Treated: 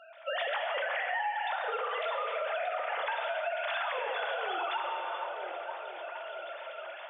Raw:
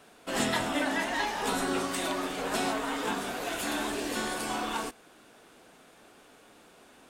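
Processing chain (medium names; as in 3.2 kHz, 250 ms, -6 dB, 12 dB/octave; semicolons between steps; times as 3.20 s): formants replaced by sine waves; level rider gain up to 11 dB; painted sound fall, 3.76–4.59 s, 330–1500 Hz -29 dBFS; on a send: feedback echo behind a low-pass 465 ms, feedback 58%, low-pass 930 Hz, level -17.5 dB; on the sum: gated-style reverb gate 490 ms falling, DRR 2 dB; in parallel at +1 dB: peak limiter -13 dBFS, peak gain reduction 10.5 dB; on the sum: compression 8:1, threshold -26 dBFS, peak gain reduction 20 dB; high-pass 210 Hz 6 dB/octave; bass shelf 320 Hz -6.5 dB; trim -4 dB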